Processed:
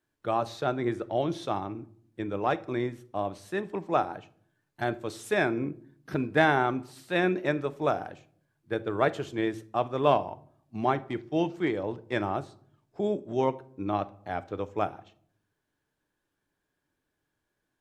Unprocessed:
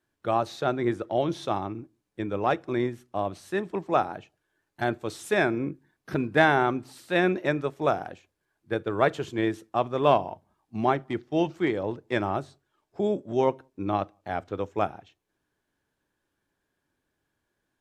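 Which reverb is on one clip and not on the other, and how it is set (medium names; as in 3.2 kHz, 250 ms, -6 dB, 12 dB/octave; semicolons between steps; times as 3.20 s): simulated room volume 870 m³, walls furnished, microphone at 0.44 m; trim -2.5 dB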